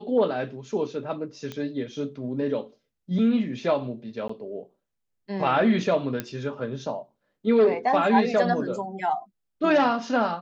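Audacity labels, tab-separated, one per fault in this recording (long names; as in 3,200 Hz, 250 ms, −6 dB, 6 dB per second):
1.520000	1.520000	click −20 dBFS
4.280000	4.290000	drop-out 14 ms
6.200000	6.200000	click −13 dBFS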